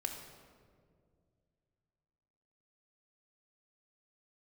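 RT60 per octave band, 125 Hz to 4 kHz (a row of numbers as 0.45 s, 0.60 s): 3.3 s, 2.8 s, 2.5 s, 1.7 s, 1.3 s, 1.1 s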